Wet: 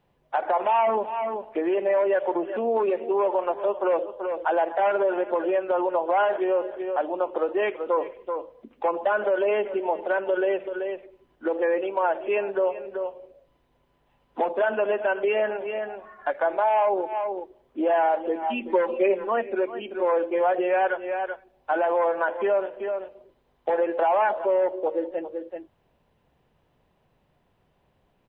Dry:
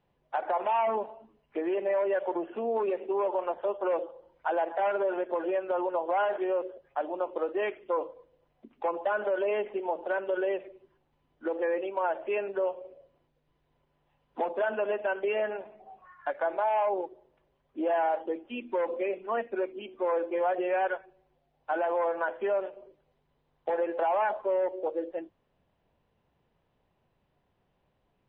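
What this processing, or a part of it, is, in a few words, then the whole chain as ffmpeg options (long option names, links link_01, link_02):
ducked delay: -filter_complex "[0:a]asplit=3[link_01][link_02][link_03];[link_02]adelay=384,volume=-6dB[link_04];[link_03]apad=whole_len=1264359[link_05];[link_04][link_05]sidechaincompress=threshold=-45dB:ratio=8:attack=5.9:release=101[link_06];[link_01][link_06]amix=inputs=2:normalize=0,asettb=1/sr,asplit=3[link_07][link_08][link_09];[link_07]atrim=end=18.424[link_10];[link_08]atrim=start=18.42:end=19.29,asetpts=PTS-STARTPTS,afade=type=in:duration=0.004:curve=qsin,afade=type=out:start_time=0.866:duration=0.004:curve=qsin,aecho=1:1:5.2:0.71,atrim=end_sample=38367[link_11];[link_09]atrim=start=19.286[link_12];[link_10][link_11]acrossfade=duration=0.004:curve1=hsin:curve2=qsin[link_13];[link_13][link_12]acrossfade=duration=0.004:curve1=qsin:curve2=hsin,volume=5.5dB"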